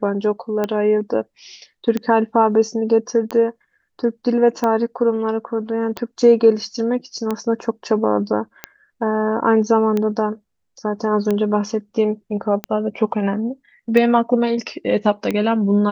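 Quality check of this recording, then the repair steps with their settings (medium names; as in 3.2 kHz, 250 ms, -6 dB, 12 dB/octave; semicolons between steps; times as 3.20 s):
tick 45 rpm -9 dBFS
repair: de-click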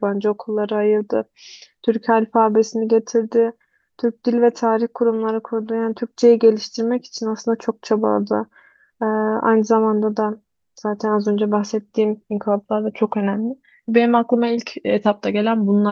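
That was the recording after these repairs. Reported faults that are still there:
nothing left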